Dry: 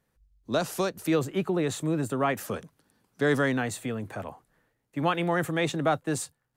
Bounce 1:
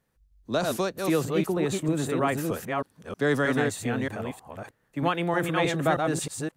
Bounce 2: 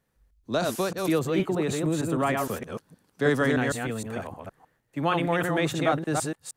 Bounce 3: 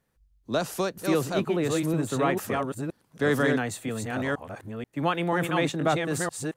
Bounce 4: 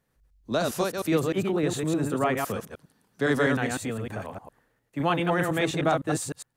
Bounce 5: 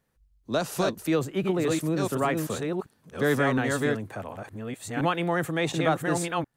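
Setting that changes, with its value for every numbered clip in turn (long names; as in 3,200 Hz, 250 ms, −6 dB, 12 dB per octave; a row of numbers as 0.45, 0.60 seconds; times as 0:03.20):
delay that plays each chunk backwards, delay time: 314, 155, 484, 102, 716 milliseconds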